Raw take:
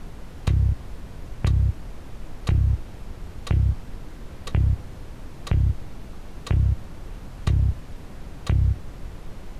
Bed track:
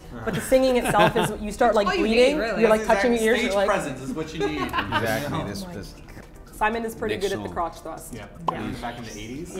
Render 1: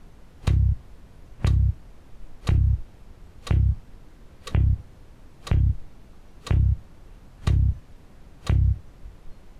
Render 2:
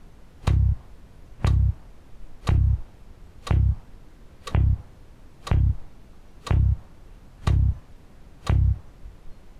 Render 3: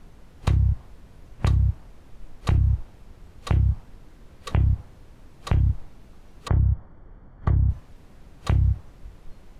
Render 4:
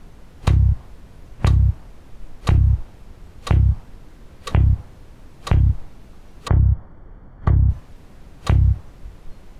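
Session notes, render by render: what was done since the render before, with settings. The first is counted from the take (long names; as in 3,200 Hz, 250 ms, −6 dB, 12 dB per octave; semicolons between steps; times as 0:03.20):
noise reduction from a noise print 10 dB
dynamic equaliser 910 Hz, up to +6 dB, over −52 dBFS, Q 1.1
0:06.48–0:07.70: Savitzky-Golay smoothing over 41 samples
level +5 dB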